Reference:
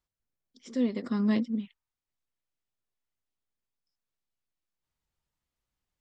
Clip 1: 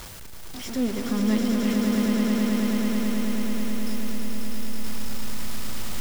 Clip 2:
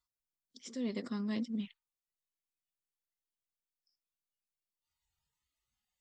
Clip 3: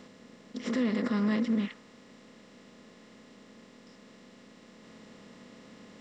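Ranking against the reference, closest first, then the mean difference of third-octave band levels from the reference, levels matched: 2, 3, 1; 3.0, 8.0, 13.0 decibels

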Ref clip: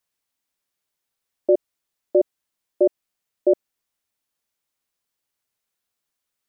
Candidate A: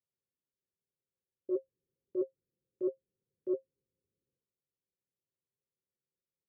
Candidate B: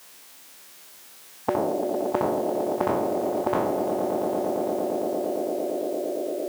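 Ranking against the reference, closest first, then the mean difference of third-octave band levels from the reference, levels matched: A, B; 3.5, 20.5 decibels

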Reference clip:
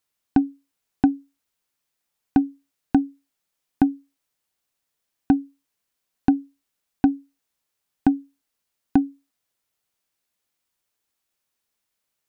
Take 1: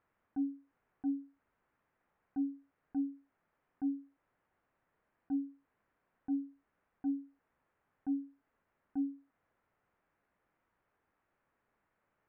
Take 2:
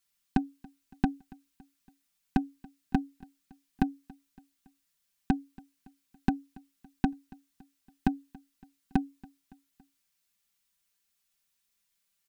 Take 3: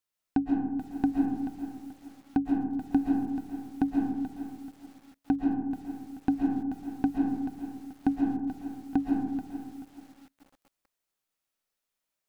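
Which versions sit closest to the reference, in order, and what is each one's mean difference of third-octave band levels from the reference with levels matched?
2, 1, 3; 3.0, 4.5, 9.0 decibels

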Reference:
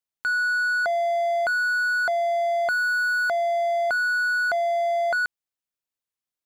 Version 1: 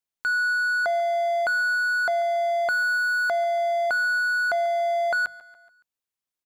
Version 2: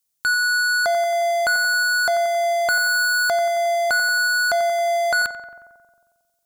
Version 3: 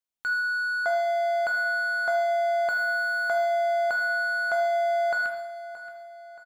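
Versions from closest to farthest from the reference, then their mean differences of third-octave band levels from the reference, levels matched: 1, 3, 2; 1.5, 5.0, 6.5 decibels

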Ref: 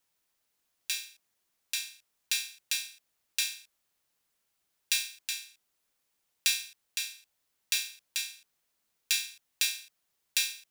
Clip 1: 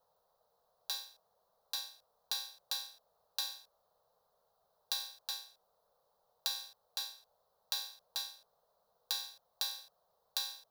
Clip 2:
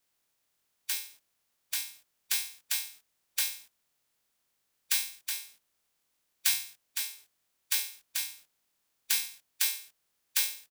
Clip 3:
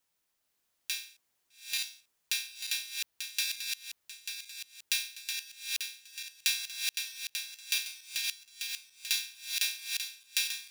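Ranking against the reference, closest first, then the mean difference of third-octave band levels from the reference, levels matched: 3, 2, 1; 2.0, 3.5, 6.0 decibels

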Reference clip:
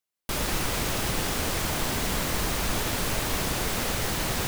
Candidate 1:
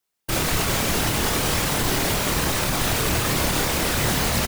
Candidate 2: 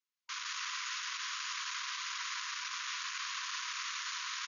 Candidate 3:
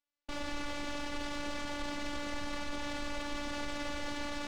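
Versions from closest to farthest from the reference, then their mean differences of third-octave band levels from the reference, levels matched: 1, 3, 2; 2.0, 8.0, 30.5 decibels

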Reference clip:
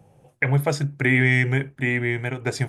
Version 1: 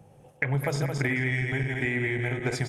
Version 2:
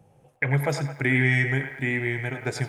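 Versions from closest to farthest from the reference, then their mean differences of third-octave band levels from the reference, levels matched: 2, 1; 2.5, 5.0 decibels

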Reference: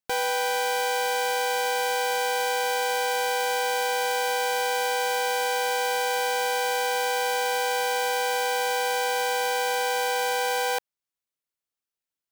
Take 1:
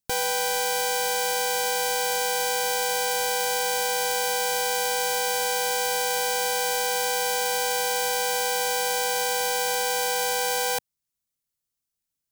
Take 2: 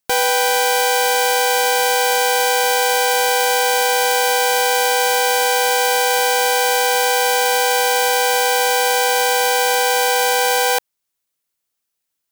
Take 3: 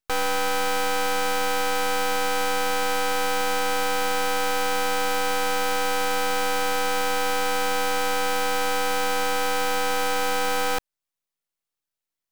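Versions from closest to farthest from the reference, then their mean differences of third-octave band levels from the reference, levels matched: 2, 1, 3; 1.5, 4.0, 6.5 decibels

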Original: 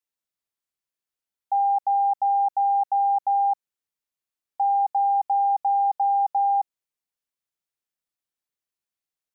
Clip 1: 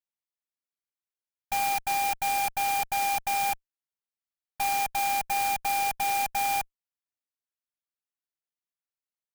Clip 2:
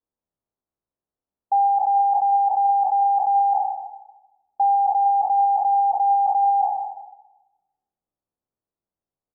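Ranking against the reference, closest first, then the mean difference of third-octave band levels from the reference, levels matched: 2, 1; 1.0, 21.5 decibels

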